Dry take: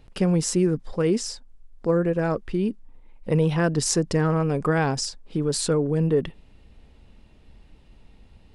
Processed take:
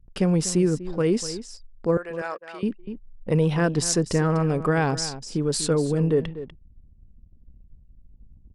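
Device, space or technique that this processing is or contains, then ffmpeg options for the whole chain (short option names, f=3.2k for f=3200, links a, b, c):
ducked delay: -filter_complex "[0:a]asettb=1/sr,asplit=3[a][b][c];[a]atrim=end=1.974[d];[b]atrim=start=1.97:end=2.63,asetpts=PTS-STARTPTS,afade=t=in:d=0.004:c=qsin,afade=t=out:st=0.656:d=0.004:c=qsin,highpass=880[e];[c]atrim=start=2.626[f];[d][e]acrossfade=d=0.004:c1=hsin:c2=qsin[g];[g][f]acrossfade=d=0.004:c1=qsin:c2=hsin,asplit=3[h][i][j];[i]adelay=245,volume=-4dB[k];[j]apad=whole_len=387744[l];[k][l]sidechaincompress=threshold=-27dB:ratio=16:attack=28:release=1400[m];[h][m]amix=inputs=2:normalize=0,anlmdn=0.0251"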